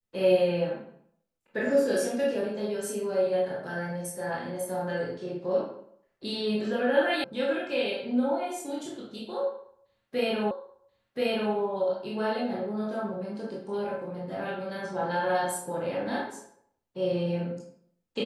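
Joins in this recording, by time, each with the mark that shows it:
0:07.24: cut off before it has died away
0:10.51: the same again, the last 1.03 s

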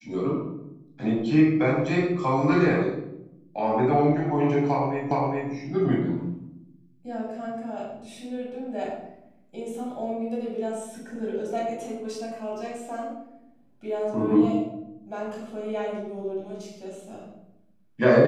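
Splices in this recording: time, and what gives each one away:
0:05.11: the same again, the last 0.41 s

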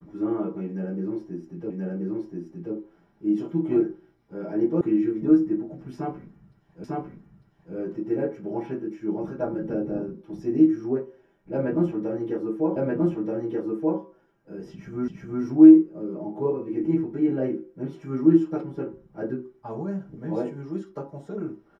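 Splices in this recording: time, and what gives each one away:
0:01.70: the same again, the last 1.03 s
0:04.81: cut off before it has died away
0:06.84: the same again, the last 0.9 s
0:12.76: the same again, the last 1.23 s
0:15.08: the same again, the last 0.36 s

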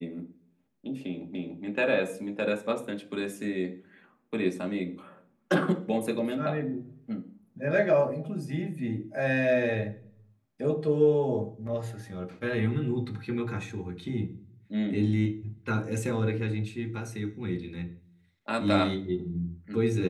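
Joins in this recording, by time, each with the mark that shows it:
0:01.35: the same again, the last 0.29 s

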